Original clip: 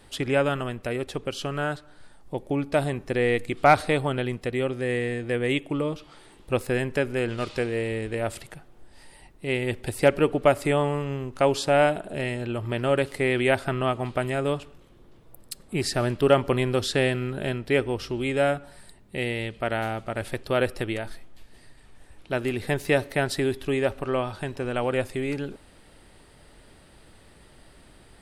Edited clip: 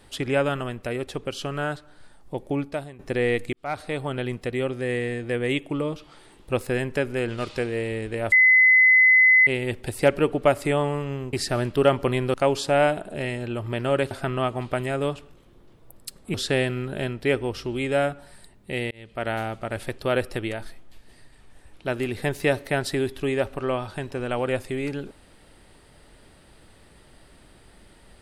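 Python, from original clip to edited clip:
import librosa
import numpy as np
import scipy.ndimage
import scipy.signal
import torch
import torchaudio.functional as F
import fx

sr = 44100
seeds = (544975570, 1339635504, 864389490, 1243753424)

y = fx.edit(x, sr, fx.fade_out_to(start_s=2.6, length_s=0.39, curve='qua', floor_db=-16.0),
    fx.fade_in_span(start_s=3.53, length_s=0.78),
    fx.bleep(start_s=8.32, length_s=1.15, hz=2030.0, db=-12.0),
    fx.cut(start_s=13.1, length_s=0.45),
    fx.move(start_s=15.78, length_s=1.01, to_s=11.33),
    fx.fade_in_span(start_s=19.36, length_s=0.38), tone=tone)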